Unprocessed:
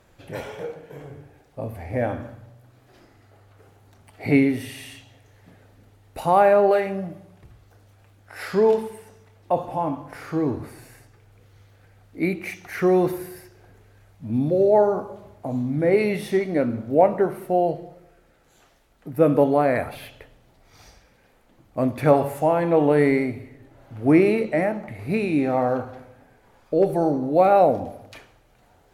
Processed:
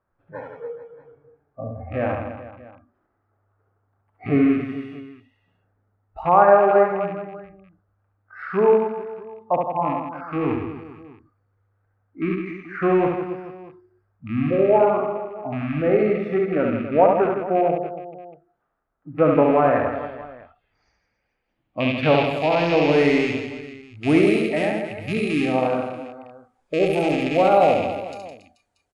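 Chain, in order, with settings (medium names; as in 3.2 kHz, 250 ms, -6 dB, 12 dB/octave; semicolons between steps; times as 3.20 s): rattle on loud lows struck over -29 dBFS, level -18 dBFS; spectral noise reduction 19 dB; low-pass sweep 1.3 kHz -> 8.8 kHz, 20.04–23.77 s; on a send: reverse bouncing-ball echo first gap 70 ms, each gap 1.3×, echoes 5; on the sum: trim -2 dB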